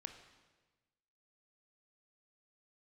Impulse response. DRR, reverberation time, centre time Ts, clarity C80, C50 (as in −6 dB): 6.0 dB, 1.3 s, 21 ms, 9.5 dB, 8.0 dB